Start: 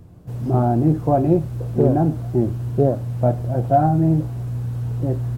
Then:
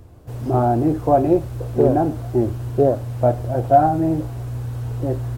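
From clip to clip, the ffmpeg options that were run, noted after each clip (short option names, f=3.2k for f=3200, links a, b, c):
-af "equalizer=f=170:w=1.6:g=-13.5,volume=4dB"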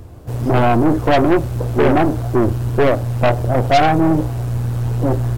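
-af "aeval=exprs='0.794*(cos(1*acos(clip(val(0)/0.794,-1,1)))-cos(1*PI/2))+0.158*(cos(6*acos(clip(val(0)/0.794,-1,1)))-cos(6*PI/2))':c=same,asoftclip=type=tanh:threshold=-14dB,volume=7.5dB"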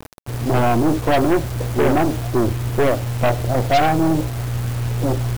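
-af "acrusher=bits=4:mix=0:aa=0.000001,volume=-3dB"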